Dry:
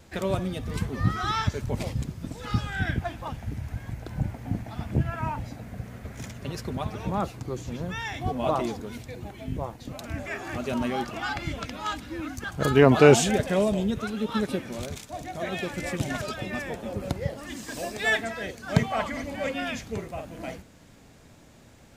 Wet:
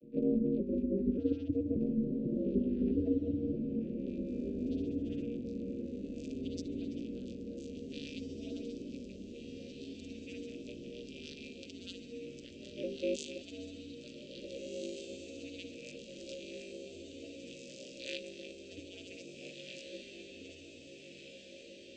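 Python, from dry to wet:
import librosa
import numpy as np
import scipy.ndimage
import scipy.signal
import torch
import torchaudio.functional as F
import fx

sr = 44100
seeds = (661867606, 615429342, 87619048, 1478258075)

p1 = fx.vocoder_arp(x, sr, chord='minor triad', root=47, every_ms=583)
p2 = scipy.signal.sosfilt(scipy.signal.cheby1(3, 1.0, [380.0, 3000.0], 'bandstop', fs=sr, output='sos'), p1)
p3 = fx.over_compress(p2, sr, threshold_db=-38.0, ratio=-1.0)
p4 = p2 + F.gain(torch.from_numpy(p3), -3.0).numpy()
p5 = fx.small_body(p4, sr, hz=(450.0, 1500.0, 2500.0), ring_ms=30, db=14)
p6 = p5 * np.sin(2.0 * np.pi * 100.0 * np.arange(len(p5)) / sr)
p7 = fx.filter_sweep_bandpass(p6, sr, from_hz=260.0, to_hz=5200.0, start_s=3.39, end_s=4.31, q=0.83)
p8 = p7 + fx.echo_diffused(p7, sr, ms=1790, feedback_pct=68, wet_db=-5, dry=0)
y = F.gain(torch.from_numpy(p8), 1.0).numpy()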